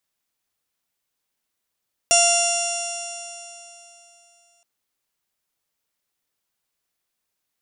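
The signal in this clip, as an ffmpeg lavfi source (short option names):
-f lavfi -i "aevalsrc='0.126*pow(10,-3*t/3.17)*sin(2*PI*690.15*t)+0.0282*pow(10,-3*t/3.17)*sin(2*PI*1381.21*t)+0.0141*pow(10,-3*t/3.17)*sin(2*PI*2074.09*t)+0.1*pow(10,-3*t/3.17)*sin(2*PI*2769.7*t)+0.0251*pow(10,-3*t/3.17)*sin(2*PI*3468.92*t)+0.0178*pow(10,-3*t/3.17)*sin(2*PI*4172.66*t)+0.0178*pow(10,-3*t/3.17)*sin(2*PI*4881.79*t)+0.126*pow(10,-3*t/3.17)*sin(2*PI*5597.18*t)+0.0447*pow(10,-3*t/3.17)*sin(2*PI*6319.69*t)+0.126*pow(10,-3*t/3.17)*sin(2*PI*7050.17*t)+0.0224*pow(10,-3*t/3.17)*sin(2*PI*7789.43*t)+0.0631*pow(10,-3*t/3.17)*sin(2*PI*8538.28*t)+0.0668*pow(10,-3*t/3.17)*sin(2*PI*9297.53*t)+0.0126*pow(10,-3*t/3.17)*sin(2*PI*10067.93*t)':d=2.52:s=44100"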